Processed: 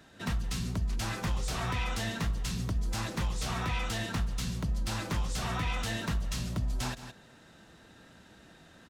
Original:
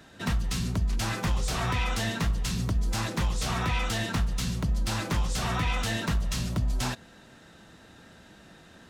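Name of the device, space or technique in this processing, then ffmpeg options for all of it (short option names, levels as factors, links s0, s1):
ducked delay: -filter_complex "[0:a]asplit=3[s0][s1][s2];[s1]adelay=166,volume=0.501[s3];[s2]apad=whole_len=399421[s4];[s3][s4]sidechaincompress=threshold=0.00708:ratio=5:attack=46:release=204[s5];[s0][s5]amix=inputs=2:normalize=0,volume=0.596"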